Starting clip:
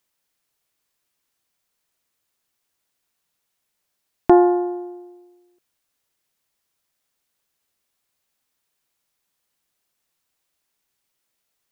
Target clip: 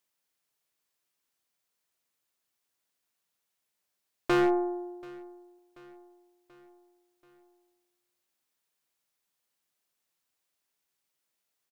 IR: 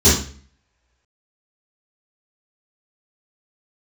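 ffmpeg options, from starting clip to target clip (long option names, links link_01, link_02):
-filter_complex "[0:a]lowshelf=frequency=95:gain=-8.5,aeval=exprs='(tanh(2.51*val(0)+0.75)-tanh(0.75))/2.51':channel_layout=same,acontrast=68,aeval=exprs='0.316*(abs(mod(val(0)/0.316+3,4)-2)-1)':channel_layout=same,asplit=2[link_01][link_02];[link_02]aecho=0:1:734|1468|2202|2936:0.0708|0.0382|0.0206|0.0111[link_03];[link_01][link_03]amix=inputs=2:normalize=0,volume=-8dB"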